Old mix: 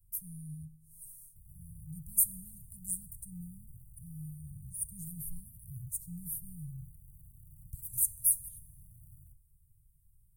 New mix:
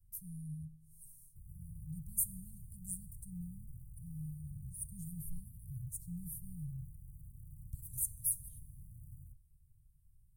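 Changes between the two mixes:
background +3.5 dB; master: add high shelf 6400 Hz -9.5 dB

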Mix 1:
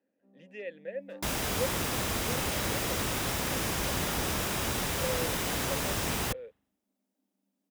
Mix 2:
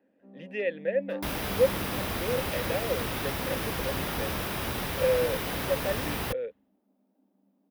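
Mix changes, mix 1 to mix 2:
speech +10.5 dB; first sound +12.0 dB; master: add bell 7200 Hz -12.5 dB 0.71 oct

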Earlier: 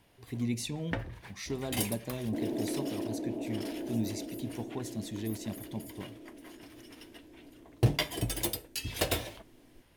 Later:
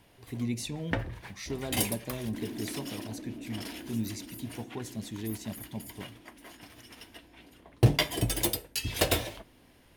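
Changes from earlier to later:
first sound +4.0 dB; second sound: add band-pass 210 Hz, Q 2.5

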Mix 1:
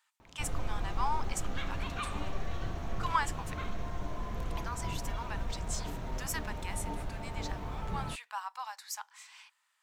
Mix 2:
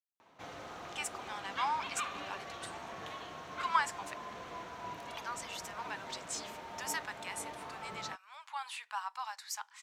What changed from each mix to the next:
speech: entry +0.60 s; master: add weighting filter A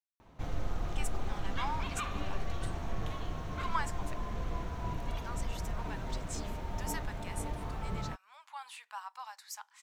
speech -4.5 dB; master: remove weighting filter A

